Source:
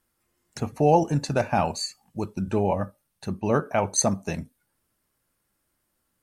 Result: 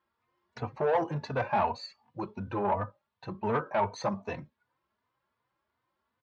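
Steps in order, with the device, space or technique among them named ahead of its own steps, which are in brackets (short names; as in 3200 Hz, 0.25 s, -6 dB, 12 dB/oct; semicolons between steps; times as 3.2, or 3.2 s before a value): barber-pole flanger into a guitar amplifier (endless flanger 3.3 ms +2.7 Hz; soft clip -22 dBFS, distortion -12 dB; speaker cabinet 100–3800 Hz, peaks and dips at 170 Hz -8 dB, 280 Hz -7 dB, 1000 Hz +10 dB, 2800 Hz -3 dB)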